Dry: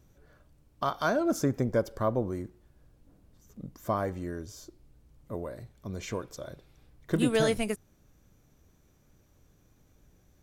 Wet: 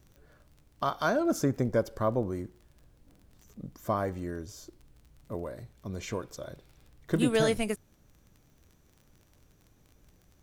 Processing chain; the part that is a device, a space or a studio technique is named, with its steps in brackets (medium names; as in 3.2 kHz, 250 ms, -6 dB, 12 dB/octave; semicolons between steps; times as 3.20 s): vinyl LP (crackle 29 per s -45 dBFS; pink noise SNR 43 dB)